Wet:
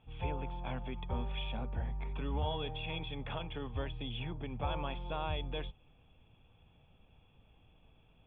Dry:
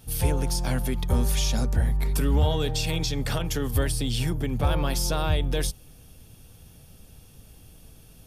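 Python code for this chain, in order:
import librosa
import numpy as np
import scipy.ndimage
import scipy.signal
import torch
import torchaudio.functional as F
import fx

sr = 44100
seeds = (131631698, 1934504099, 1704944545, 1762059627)

y = scipy.signal.sosfilt(scipy.signal.cheby1(6, 9, 3500.0, 'lowpass', fs=sr, output='sos'), x)
y = y * 10.0 ** (-5.5 / 20.0)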